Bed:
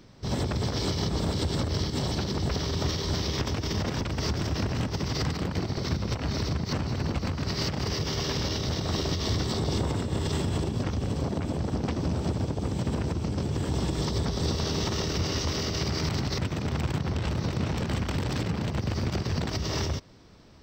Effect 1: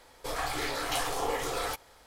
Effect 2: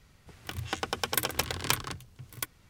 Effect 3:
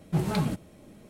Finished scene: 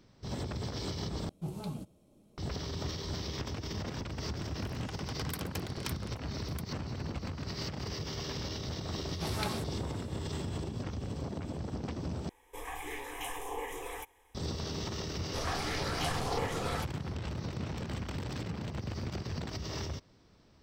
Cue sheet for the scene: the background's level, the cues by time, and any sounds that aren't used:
bed −9 dB
0:01.29: overwrite with 3 −12 dB + parametric band 1,800 Hz −14 dB 0.73 octaves
0:04.16: mix in 2 −13.5 dB
0:09.08: mix in 3 −1 dB + high-pass filter 830 Hz 6 dB per octave
0:12.29: overwrite with 1 −5.5 dB + phaser with its sweep stopped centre 920 Hz, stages 8
0:15.09: mix in 1 −3.5 dB + high-shelf EQ 10,000 Hz −11.5 dB

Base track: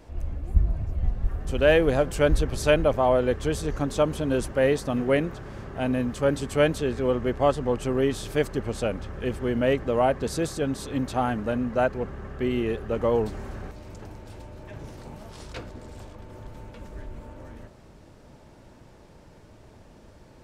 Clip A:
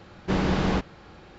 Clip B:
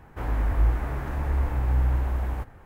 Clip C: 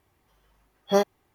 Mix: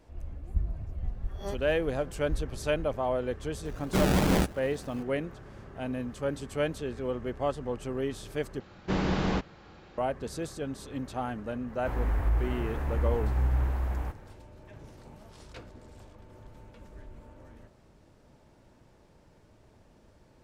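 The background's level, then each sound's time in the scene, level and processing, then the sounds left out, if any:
base track −8.5 dB
0:00.52: mix in C −17.5 dB + peak hold with a rise ahead of every peak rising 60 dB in 0.31 s
0:03.65: mix in A −0.5 dB + sample-and-hold swept by an LFO 33×, swing 60% 2.8 Hz
0:08.60: overwrite with A −4 dB
0:11.68: mix in B −3.5 dB + brickwall limiter −15 dBFS

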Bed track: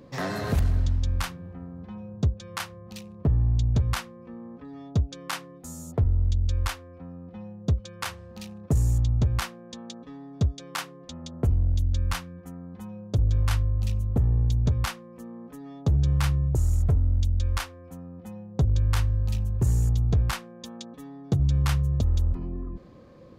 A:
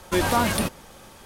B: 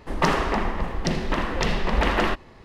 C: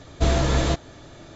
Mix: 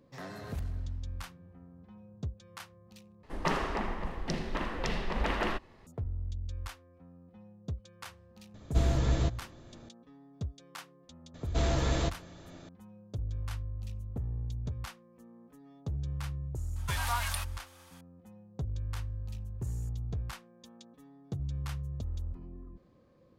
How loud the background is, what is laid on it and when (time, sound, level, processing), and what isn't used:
bed track −13.5 dB
0:03.23: overwrite with B −9.5 dB
0:08.54: mix in C −13 dB + low-shelf EQ 290 Hz +7.5 dB
0:11.34: mix in C −7.5 dB + soft clipping −11.5 dBFS
0:16.76: mix in A −8.5 dB + high-pass filter 850 Hz 24 dB per octave

